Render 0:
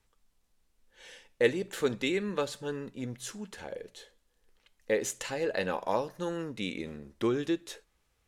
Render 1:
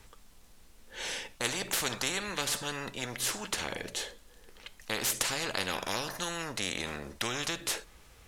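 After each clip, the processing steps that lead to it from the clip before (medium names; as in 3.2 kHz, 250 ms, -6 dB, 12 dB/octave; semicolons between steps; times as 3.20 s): spectrum-flattening compressor 4:1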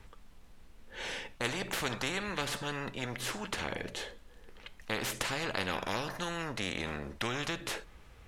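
tone controls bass +3 dB, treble -10 dB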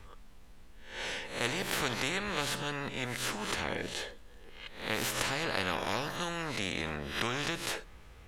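reverse spectral sustain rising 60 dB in 0.48 s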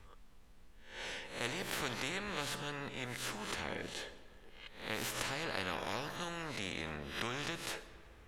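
reverberation RT60 2.6 s, pre-delay 70 ms, DRR 15.5 dB; trim -6 dB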